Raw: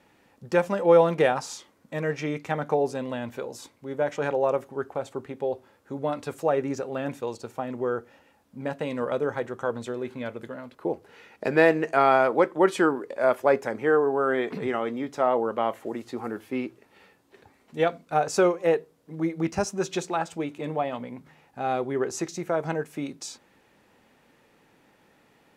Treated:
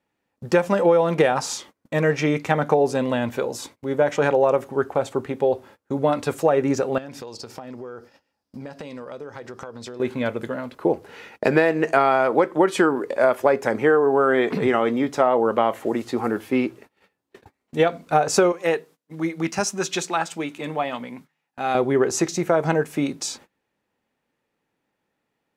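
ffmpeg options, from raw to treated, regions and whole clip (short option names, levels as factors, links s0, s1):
-filter_complex "[0:a]asettb=1/sr,asplit=3[s0][s1][s2];[s0]atrim=end=6.984[s3];[s1]atrim=start=6.98:end=10,asetpts=PTS-STARTPTS,afade=t=in:d=0.004:c=qsin,afade=t=out:st=3.016:d=0.004:c=qsin,equalizer=f=5000:t=o:w=0.43:g=14,acompressor=threshold=0.00891:ratio=10:attack=3.2:release=140:knee=1:detection=peak[s4];[s2]atrim=start=9.996[s5];[s3][s4]acrossfade=d=0.004:c1=hsin:c2=qsin[s6];[s6][s5]acrossfade=d=0.004:c1=qsin:c2=hsin,asettb=1/sr,asplit=3[s7][s8][s9];[s7]atrim=end=18.524[s10];[s8]atrim=start=18.52:end=21.75,asetpts=PTS-STARTPTS,afade=t=in:d=0.004:c=qsin,afade=t=out:st=3.226:d=0.004:c=qsin,highpass=210,equalizer=f=480:t=o:w=2.1:g=-8.5[s11];[s9]atrim=start=21.746[s12];[s10][s11]acrossfade=d=0.004:c1=hsin:c2=qsin[s13];[s13][s12]acrossfade=d=0.004:c1=qsin:c2=hsin,agate=range=0.0562:threshold=0.00251:ratio=16:detection=peak,acompressor=threshold=0.0794:ratio=12,volume=2.82"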